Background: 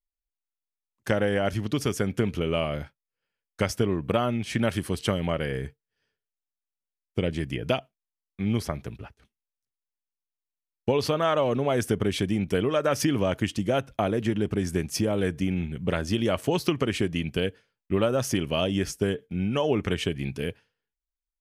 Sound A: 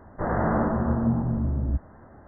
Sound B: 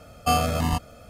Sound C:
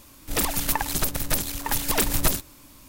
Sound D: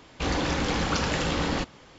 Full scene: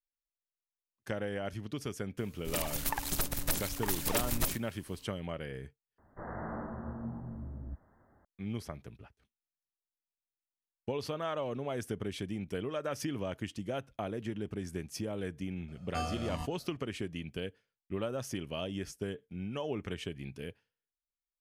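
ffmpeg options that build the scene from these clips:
ffmpeg -i bed.wav -i cue0.wav -i cue1.wav -i cue2.wav -filter_complex "[0:a]volume=-12dB[link_01];[3:a]dynaudnorm=framelen=160:gausssize=9:maxgain=6dB[link_02];[1:a]crystalizer=i=4:c=0[link_03];[2:a]lowpass=7700[link_04];[link_01]asplit=2[link_05][link_06];[link_05]atrim=end=5.984[link_07];[link_03]atrim=end=2.27,asetpts=PTS-STARTPTS,volume=-17dB[link_08];[link_06]atrim=start=8.246[link_09];[link_02]atrim=end=2.88,asetpts=PTS-STARTPTS,volume=-12dB,afade=type=in:duration=0.004:curve=hsin,afade=type=out:start_time=2.876:duration=0.004:curve=hsin,adelay=2170[link_10];[link_04]atrim=end=1.09,asetpts=PTS-STARTPTS,volume=-15dB,afade=type=in:duration=0.004:curve=hsin,afade=type=out:start_time=1.086:duration=0.004:curve=hsin,adelay=15680[link_11];[link_07][link_08]acrossfade=duration=0.004:curve1=hsin:curve2=hsin[link_12];[link_12][link_09]acrossfade=duration=0.004:curve1=hsin:curve2=hsin[link_13];[link_13][link_10][link_11]amix=inputs=3:normalize=0" out.wav

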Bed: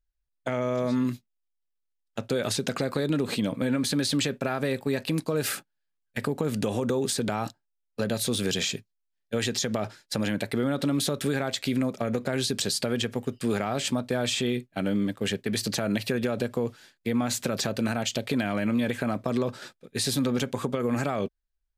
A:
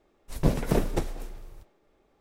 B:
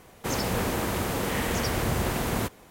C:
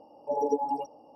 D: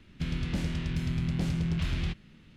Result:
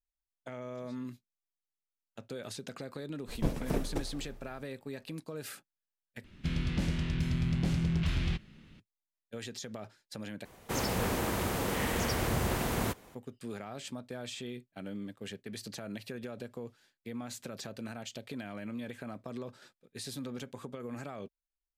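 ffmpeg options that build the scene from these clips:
ffmpeg -i bed.wav -i cue0.wav -i cue1.wav -i cue2.wav -i cue3.wav -filter_complex "[0:a]volume=-14.5dB,asplit=3[link_01][link_02][link_03];[link_01]atrim=end=6.244[link_04];[4:a]atrim=end=2.56,asetpts=PTS-STARTPTS,volume=-0.5dB[link_05];[link_02]atrim=start=8.796:end=10.454[link_06];[2:a]atrim=end=2.7,asetpts=PTS-STARTPTS,volume=-4dB[link_07];[link_03]atrim=start=13.146[link_08];[1:a]atrim=end=2.2,asetpts=PTS-STARTPTS,volume=-8dB,afade=type=in:duration=0.004:curve=hsin,afade=type=out:start_time=2.196:duration=0.004:curve=hsin,adelay=2990[link_09];[link_04][link_05]acrossfade=duration=0.004:curve1=hsin:curve2=hsin[link_10];[link_10][link_06]acrossfade=duration=0.004:curve1=hsin:curve2=hsin[link_11];[link_11][link_07]acrossfade=duration=0.004:curve1=hsin:curve2=hsin[link_12];[link_12][link_08]acrossfade=duration=0.004:curve1=hsin:curve2=hsin[link_13];[link_13][link_09]amix=inputs=2:normalize=0" out.wav

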